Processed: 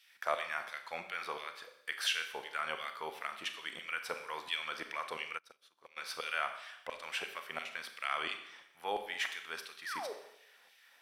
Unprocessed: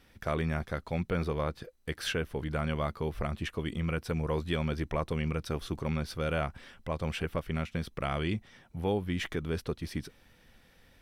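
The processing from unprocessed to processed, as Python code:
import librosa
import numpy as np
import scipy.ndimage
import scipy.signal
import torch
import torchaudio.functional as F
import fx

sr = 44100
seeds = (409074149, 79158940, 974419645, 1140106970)

y = fx.filter_lfo_highpass(x, sr, shape='saw_down', hz=2.9, low_hz=680.0, high_hz=3000.0, q=1.3)
y = fx.spec_paint(y, sr, seeds[0], shape='fall', start_s=9.85, length_s=0.28, low_hz=380.0, high_hz=2000.0, level_db=-41.0)
y = fx.rev_schroeder(y, sr, rt60_s=0.79, comb_ms=29, drr_db=7.0)
y = fx.upward_expand(y, sr, threshold_db=-50.0, expansion=2.5, at=(5.37, 5.96), fade=0.02)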